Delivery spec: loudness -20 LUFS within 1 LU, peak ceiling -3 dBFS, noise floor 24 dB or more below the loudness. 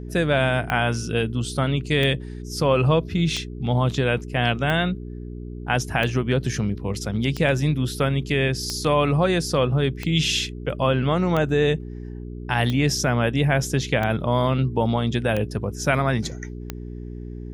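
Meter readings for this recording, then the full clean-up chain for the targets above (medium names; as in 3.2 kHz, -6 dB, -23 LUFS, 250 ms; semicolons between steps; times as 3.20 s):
clicks found 13; hum 60 Hz; highest harmonic 420 Hz; hum level -32 dBFS; loudness -22.5 LUFS; peak level -6.0 dBFS; loudness target -20.0 LUFS
-> de-click; de-hum 60 Hz, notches 7; trim +2.5 dB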